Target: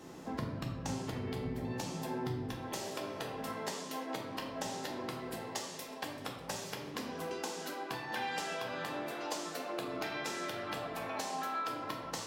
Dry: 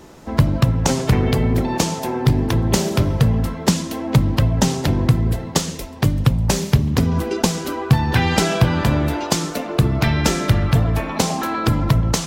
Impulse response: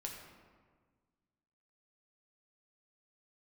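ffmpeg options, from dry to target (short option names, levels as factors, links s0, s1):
-filter_complex "[0:a]asetnsamples=n=441:p=0,asendcmd='2.52 highpass f 430',highpass=97,acompressor=threshold=0.0316:ratio=6[s0];[1:a]atrim=start_sample=2205,asetrate=83790,aresample=44100[s1];[s0][s1]afir=irnorm=-1:irlink=0,volume=1.12"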